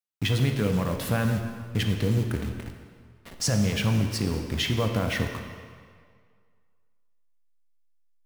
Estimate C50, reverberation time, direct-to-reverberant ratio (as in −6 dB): 5.5 dB, 2.0 s, 4.0 dB